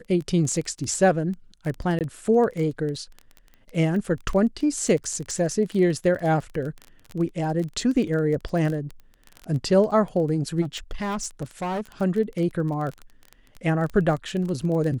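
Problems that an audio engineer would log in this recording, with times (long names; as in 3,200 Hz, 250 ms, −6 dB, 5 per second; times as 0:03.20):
surface crackle 19 per second −28 dBFS
0:01.99–0:02.01: drop-out 18 ms
0:10.61–0:11.86: clipping −24.5 dBFS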